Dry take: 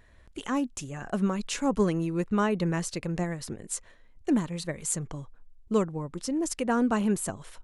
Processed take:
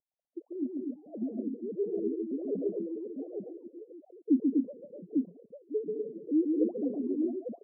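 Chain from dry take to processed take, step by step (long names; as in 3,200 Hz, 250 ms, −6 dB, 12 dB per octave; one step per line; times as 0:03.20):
three sine waves on the formant tracks
Butterworth low-pass 620 Hz 48 dB per octave
gate on every frequency bin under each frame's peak −15 dB strong
multi-tap delay 138/171/247/276/849 ms −4/−18.5/−3.5/−11/−4 dB
level −7 dB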